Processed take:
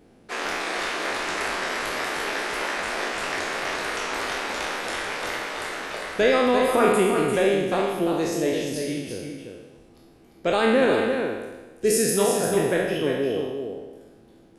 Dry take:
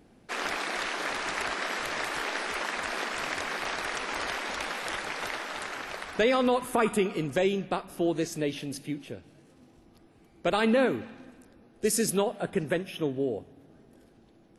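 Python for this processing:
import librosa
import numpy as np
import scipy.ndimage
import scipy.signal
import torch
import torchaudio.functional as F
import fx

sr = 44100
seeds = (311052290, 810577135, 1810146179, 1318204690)

p1 = fx.spec_trails(x, sr, decay_s=1.19)
p2 = fx.peak_eq(p1, sr, hz=430.0, db=3.5, octaves=0.87)
y = p2 + fx.echo_single(p2, sr, ms=347, db=-6.0, dry=0)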